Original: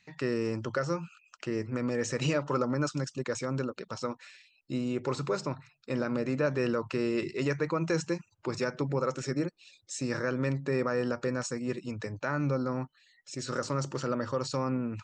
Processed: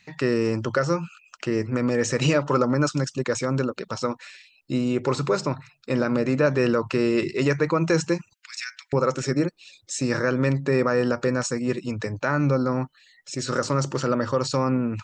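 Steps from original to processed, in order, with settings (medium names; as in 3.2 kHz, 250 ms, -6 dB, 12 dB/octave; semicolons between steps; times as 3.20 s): 8.33–8.93 s: steep high-pass 1.7 kHz 36 dB/octave; trim +8 dB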